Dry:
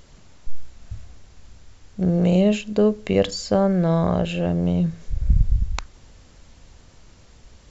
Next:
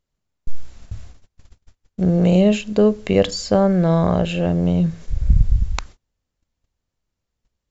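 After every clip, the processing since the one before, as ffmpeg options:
-af "agate=range=-33dB:threshold=-39dB:ratio=16:detection=peak,volume=3dB"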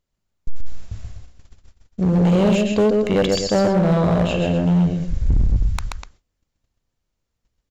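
-af "aecho=1:1:131.2|247.8:0.631|0.251,asoftclip=type=hard:threshold=-12dB"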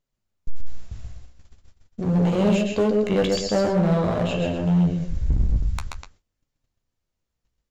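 -af "flanger=delay=6.8:depth=9.8:regen=-34:speed=0.46:shape=triangular"

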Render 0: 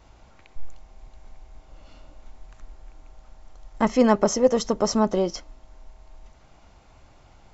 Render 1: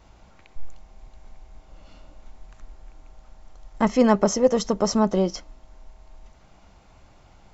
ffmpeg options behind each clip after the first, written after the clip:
-af "equalizer=f=190:w=8:g=6"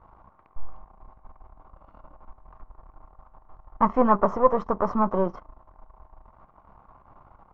-af "aeval=exprs='if(lt(val(0),0),0.251*val(0),val(0))':c=same,lowpass=f=1.1k:t=q:w=4.9"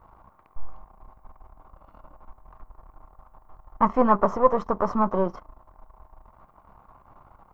-af "aemphasis=mode=production:type=50kf"

